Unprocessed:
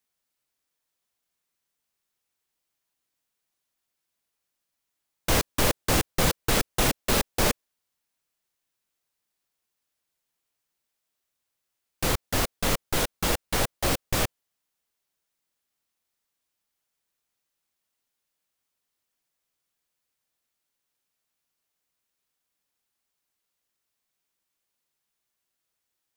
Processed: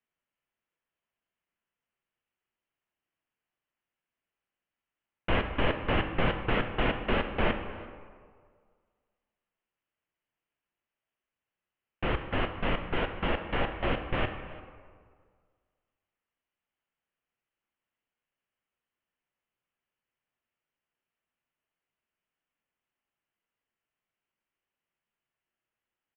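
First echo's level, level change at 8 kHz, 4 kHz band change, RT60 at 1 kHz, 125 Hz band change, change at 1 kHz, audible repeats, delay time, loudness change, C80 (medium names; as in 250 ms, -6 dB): -22.0 dB, under -40 dB, -8.5 dB, 1.8 s, -3.5 dB, -2.5 dB, 1, 342 ms, -5.0 dB, 9.0 dB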